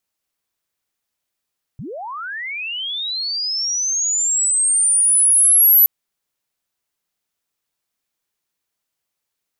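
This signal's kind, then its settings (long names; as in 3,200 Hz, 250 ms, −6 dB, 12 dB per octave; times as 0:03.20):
glide linear 100 Hz → 12,000 Hz −28 dBFS → −7.5 dBFS 4.07 s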